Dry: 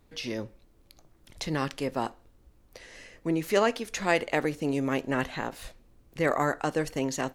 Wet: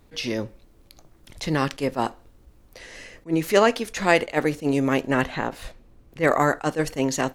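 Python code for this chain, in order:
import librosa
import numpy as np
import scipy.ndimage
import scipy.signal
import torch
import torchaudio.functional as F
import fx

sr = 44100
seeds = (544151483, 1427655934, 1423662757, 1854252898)

y = fx.high_shelf(x, sr, hz=4200.0, db=-7.0, at=(5.22, 6.23))
y = fx.attack_slew(y, sr, db_per_s=350.0)
y = y * librosa.db_to_amplitude(6.5)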